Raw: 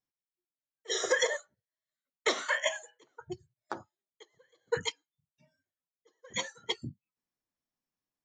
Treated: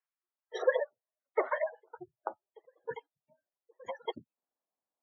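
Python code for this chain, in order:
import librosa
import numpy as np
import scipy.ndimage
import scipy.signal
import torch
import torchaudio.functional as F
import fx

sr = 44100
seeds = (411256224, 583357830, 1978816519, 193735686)

y = fx.filter_sweep_bandpass(x, sr, from_hz=1500.0, to_hz=670.0, start_s=0.06, end_s=1.1, q=1.7)
y = fx.stretch_grains(y, sr, factor=0.61, grain_ms=87.0)
y = fx.spec_gate(y, sr, threshold_db=-20, keep='strong')
y = y * librosa.db_to_amplitude(7.5)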